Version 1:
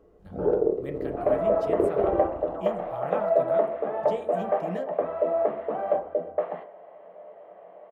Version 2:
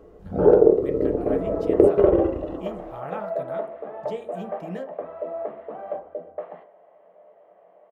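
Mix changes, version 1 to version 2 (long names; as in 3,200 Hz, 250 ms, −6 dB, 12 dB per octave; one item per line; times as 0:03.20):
first sound +9.0 dB
second sound −6.5 dB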